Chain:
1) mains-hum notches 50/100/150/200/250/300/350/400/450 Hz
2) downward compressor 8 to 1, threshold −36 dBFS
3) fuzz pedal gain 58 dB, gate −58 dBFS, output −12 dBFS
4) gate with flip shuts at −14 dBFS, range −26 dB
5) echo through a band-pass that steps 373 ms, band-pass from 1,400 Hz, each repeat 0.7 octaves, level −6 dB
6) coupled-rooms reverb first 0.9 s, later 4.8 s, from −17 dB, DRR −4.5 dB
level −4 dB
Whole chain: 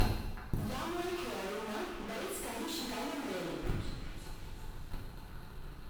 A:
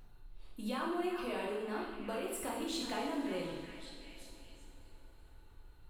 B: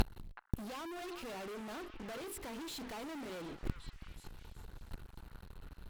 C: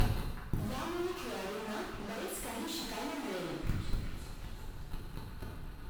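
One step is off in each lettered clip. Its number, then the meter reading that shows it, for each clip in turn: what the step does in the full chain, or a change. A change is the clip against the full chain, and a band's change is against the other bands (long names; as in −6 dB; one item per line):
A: 3, distortion level −1 dB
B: 6, change in crest factor +2.0 dB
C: 1, 125 Hz band +2.0 dB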